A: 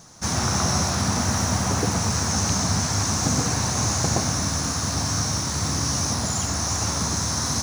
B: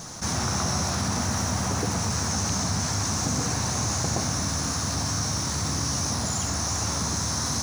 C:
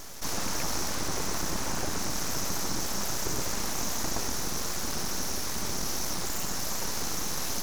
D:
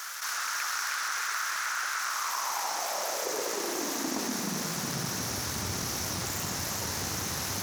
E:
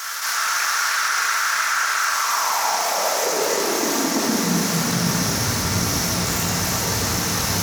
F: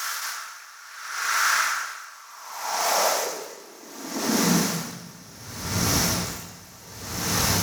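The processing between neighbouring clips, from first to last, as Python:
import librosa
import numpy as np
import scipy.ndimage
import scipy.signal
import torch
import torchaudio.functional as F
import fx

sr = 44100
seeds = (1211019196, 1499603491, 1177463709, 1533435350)

y1 = fx.env_flatten(x, sr, amount_pct=50)
y1 = F.gain(torch.from_numpy(y1), -5.0).numpy()
y2 = np.abs(y1)
y2 = F.gain(torch.from_numpy(y2), -2.0).numpy()
y3 = fx.echo_banded(y2, sr, ms=311, feedback_pct=73, hz=1900.0, wet_db=-3)
y3 = fx.filter_sweep_highpass(y3, sr, from_hz=1400.0, to_hz=91.0, start_s=1.97, end_s=5.48, q=3.6)
y3 = fx.env_flatten(y3, sr, amount_pct=50)
y3 = F.gain(torch.from_numpy(y3), -3.5).numpy()
y4 = fx.room_shoebox(y3, sr, seeds[0], volume_m3=520.0, walls='mixed', distance_m=1.6)
y4 = F.gain(torch.from_numpy(y4), 7.5).numpy()
y5 = y4 * 10.0 ** (-24 * (0.5 - 0.5 * np.cos(2.0 * np.pi * 0.67 * np.arange(len(y4)) / sr)) / 20.0)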